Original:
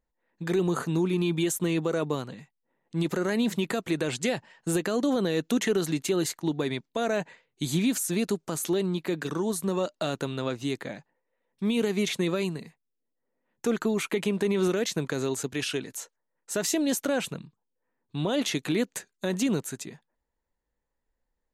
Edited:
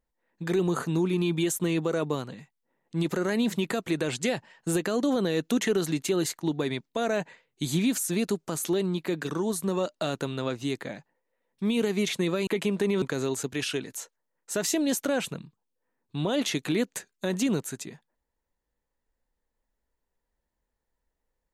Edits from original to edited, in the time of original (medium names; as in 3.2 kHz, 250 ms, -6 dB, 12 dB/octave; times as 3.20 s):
12.47–14.08 s: delete
14.63–15.02 s: delete